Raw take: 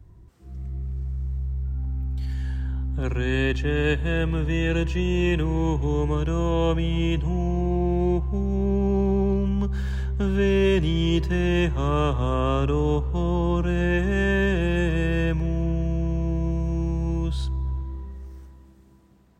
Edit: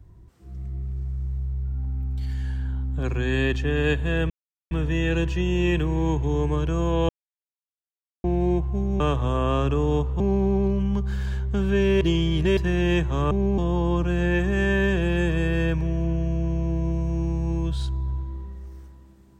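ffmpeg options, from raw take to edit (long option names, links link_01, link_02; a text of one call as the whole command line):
ffmpeg -i in.wav -filter_complex "[0:a]asplit=10[link_01][link_02][link_03][link_04][link_05][link_06][link_07][link_08][link_09][link_10];[link_01]atrim=end=4.3,asetpts=PTS-STARTPTS,afade=type=out:start_time=4.296:duration=0.004:curve=hsin,apad=pad_dur=0.41[link_11];[link_02]atrim=start=4.3:end=6.68,asetpts=PTS-STARTPTS,afade=type=in:duration=0.004:curve=hsin,afade=type=out:start_time=2.376:duration=0.004:curve=hsin[link_12];[link_03]atrim=start=6.68:end=7.83,asetpts=PTS-STARTPTS,volume=0[link_13];[link_04]atrim=start=7.83:end=8.592,asetpts=PTS-STARTPTS,afade=type=in:duration=0.004:curve=hsin[link_14];[link_05]atrim=start=11.968:end=13.172[link_15];[link_06]atrim=start=8.858:end=10.672[link_16];[link_07]atrim=start=10.668:end=11.232,asetpts=PTS-STARTPTS,areverse[link_17];[link_08]atrim=start=11.228:end=11.972[link_18];[link_09]atrim=start=8.588:end=8.862[link_19];[link_10]atrim=start=13.168[link_20];[link_11][link_12][link_13][link_14]concat=n=4:v=0:a=1[link_21];[link_21][link_15]acrossfade=duration=0.004:curve1=hsin:curve2=hsin[link_22];[link_22][link_16]acrossfade=duration=0.004:curve1=hsin:curve2=hsin[link_23];[link_23][link_17]acrossfade=duration=0.004:curve1=hsin:curve2=hsin[link_24];[link_24][link_18]acrossfade=duration=0.004:curve1=hsin:curve2=hsin[link_25];[link_25][link_19]acrossfade=duration=0.004:curve1=hsin:curve2=hsin[link_26];[link_26][link_20]acrossfade=duration=0.004:curve1=hsin:curve2=hsin" out.wav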